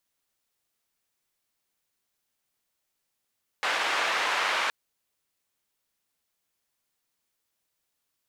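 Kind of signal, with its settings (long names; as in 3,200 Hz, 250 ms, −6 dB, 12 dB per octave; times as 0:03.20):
band-limited noise 730–2,100 Hz, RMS −27 dBFS 1.07 s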